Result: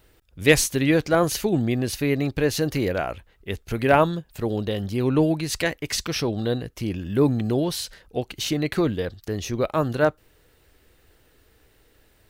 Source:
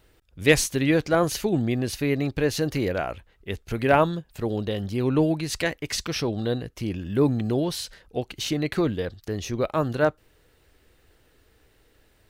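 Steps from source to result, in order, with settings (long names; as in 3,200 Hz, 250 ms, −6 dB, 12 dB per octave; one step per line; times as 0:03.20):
high-shelf EQ 12,000 Hz +6 dB
level +1.5 dB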